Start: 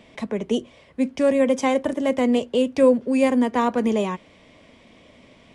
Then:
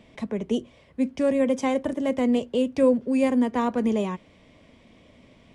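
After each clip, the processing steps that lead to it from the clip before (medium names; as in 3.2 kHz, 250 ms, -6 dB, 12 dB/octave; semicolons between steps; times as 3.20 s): bass shelf 260 Hz +7 dB; trim -5.5 dB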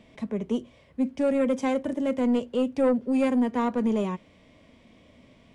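saturation -17 dBFS, distortion -16 dB; harmonic-percussive split harmonic +6 dB; trim -5.5 dB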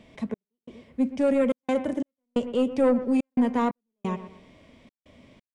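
bucket-brigade echo 120 ms, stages 2048, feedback 34%, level -13.5 dB; trance gate "xx..xxxxx." 89 bpm -60 dB; trim +1.5 dB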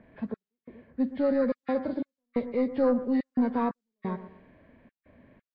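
knee-point frequency compression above 1.1 kHz 1.5:1; level-controlled noise filter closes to 2.3 kHz, open at -21.5 dBFS; trim -3 dB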